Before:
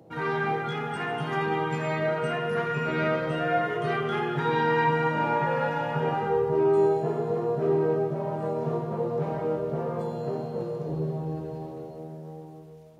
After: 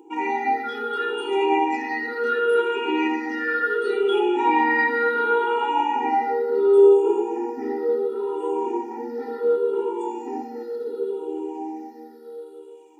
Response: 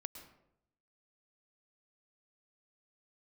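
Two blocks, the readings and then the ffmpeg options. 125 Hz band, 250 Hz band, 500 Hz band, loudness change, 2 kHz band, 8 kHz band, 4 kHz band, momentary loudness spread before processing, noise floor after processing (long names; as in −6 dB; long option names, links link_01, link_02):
below −30 dB, +4.0 dB, +5.5 dB, +5.0 dB, +6.0 dB, can't be measured, +4.5 dB, 10 LU, −43 dBFS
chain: -af "afftfilt=real='re*pow(10,18/40*sin(2*PI*(0.68*log(max(b,1)*sr/1024/100)/log(2)-(-0.7)*(pts-256)/sr)))':imag='im*pow(10,18/40*sin(2*PI*(0.68*log(max(b,1)*sr/1024/100)/log(2)-(-0.7)*(pts-256)/sr)))':win_size=1024:overlap=0.75,afftfilt=real='re*eq(mod(floor(b*sr/1024/250),2),1)':imag='im*eq(mod(floor(b*sr/1024/250),2),1)':win_size=1024:overlap=0.75,volume=3dB"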